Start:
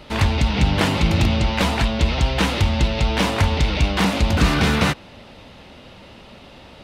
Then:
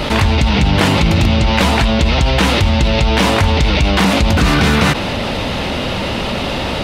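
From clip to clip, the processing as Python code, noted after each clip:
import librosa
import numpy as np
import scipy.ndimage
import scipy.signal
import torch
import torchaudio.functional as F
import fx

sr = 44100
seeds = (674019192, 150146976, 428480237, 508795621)

y = fx.env_flatten(x, sr, amount_pct=70)
y = F.gain(torch.from_numpy(y), 2.0).numpy()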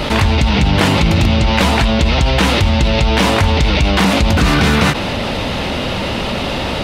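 y = fx.end_taper(x, sr, db_per_s=190.0)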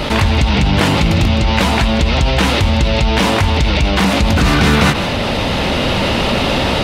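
y = x + 10.0 ** (-13.0 / 20.0) * np.pad(x, (int(158 * sr / 1000.0), 0))[:len(x)]
y = fx.rider(y, sr, range_db=4, speed_s=2.0)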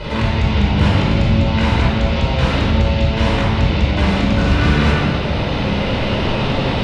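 y = fx.air_absorb(x, sr, metres=81.0)
y = fx.room_shoebox(y, sr, seeds[0], volume_m3=2000.0, walls='mixed', distance_m=4.9)
y = F.gain(torch.from_numpy(y), -12.0).numpy()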